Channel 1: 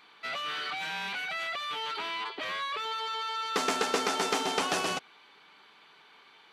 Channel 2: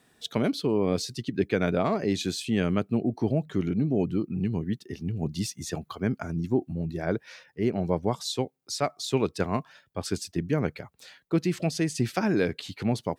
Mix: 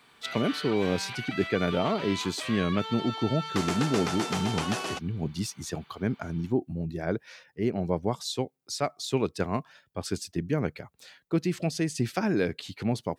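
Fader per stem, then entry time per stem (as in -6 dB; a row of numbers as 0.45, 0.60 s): -3.0, -1.5 dB; 0.00, 0.00 s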